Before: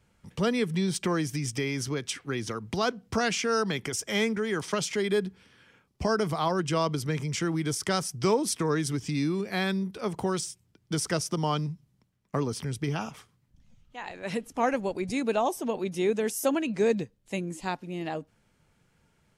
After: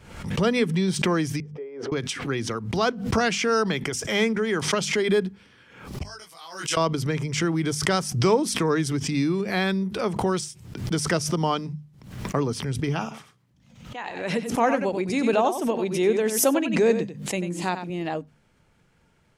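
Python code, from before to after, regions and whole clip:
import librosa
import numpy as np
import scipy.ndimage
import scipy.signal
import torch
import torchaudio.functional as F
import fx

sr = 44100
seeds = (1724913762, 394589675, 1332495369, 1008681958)

y = fx.chain(x, sr, fx.ladder_bandpass(hz=500.0, resonance_pct=70),
    fx.low_shelf(hz=490.0, db=-5.0), at=(1.4, 1.92))
y = fx.chain(y, sr, fx.differentiator(),
    fx.detune_double(cents=15), at=(6.03, 6.77))
y = fx.chain(y, sr, fx.highpass(hz=120.0, slope=12),
    fx.echo_single(ms=92, db=-9.5), at=(13.02, 17.9))
y = fx.high_shelf(y, sr, hz=6300.0, db=-6.5)
y = fx.hum_notches(y, sr, base_hz=50, count=5)
y = fx.pre_swell(y, sr, db_per_s=75.0)
y = F.gain(torch.from_numpy(y), 4.5).numpy()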